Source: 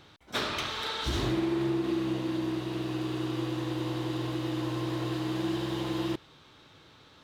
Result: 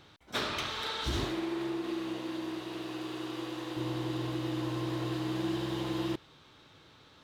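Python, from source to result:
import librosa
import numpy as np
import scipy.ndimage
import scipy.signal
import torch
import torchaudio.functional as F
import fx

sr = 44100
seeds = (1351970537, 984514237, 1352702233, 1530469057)

y = fx.peak_eq(x, sr, hz=99.0, db=-13.5, octaves=2.3, at=(1.24, 3.77))
y = y * 10.0 ** (-2.0 / 20.0)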